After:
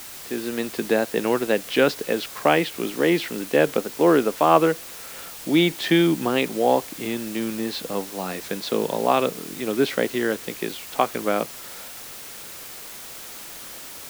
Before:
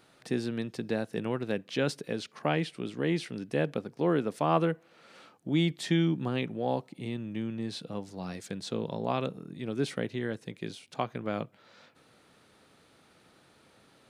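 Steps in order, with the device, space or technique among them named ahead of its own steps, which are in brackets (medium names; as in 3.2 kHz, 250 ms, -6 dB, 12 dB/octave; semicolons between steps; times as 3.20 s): dictaphone (band-pass 300–3900 Hz; level rider gain up to 11.5 dB; wow and flutter; white noise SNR 15 dB); trim +1 dB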